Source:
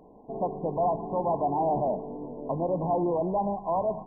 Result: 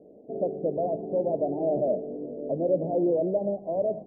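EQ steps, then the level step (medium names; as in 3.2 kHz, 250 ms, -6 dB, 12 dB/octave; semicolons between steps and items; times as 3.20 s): high-pass 440 Hz 6 dB/octave; Chebyshev low-pass 610 Hz, order 5; +7.5 dB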